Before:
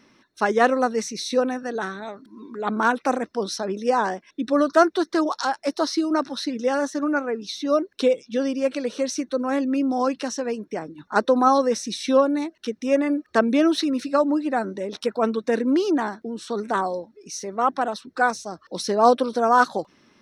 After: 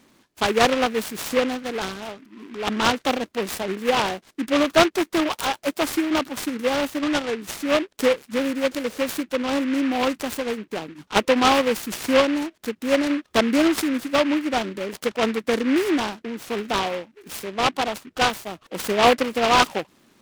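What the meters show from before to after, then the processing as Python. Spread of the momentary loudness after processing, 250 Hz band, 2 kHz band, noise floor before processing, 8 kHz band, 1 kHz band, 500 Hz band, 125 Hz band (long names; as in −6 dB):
12 LU, 0.0 dB, +3.0 dB, −63 dBFS, +2.5 dB, −1.0 dB, −0.5 dB, can't be measured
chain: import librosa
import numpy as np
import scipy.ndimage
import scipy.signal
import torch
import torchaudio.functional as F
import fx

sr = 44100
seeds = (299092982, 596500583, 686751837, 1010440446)

y = fx.noise_mod_delay(x, sr, seeds[0], noise_hz=1800.0, depth_ms=0.11)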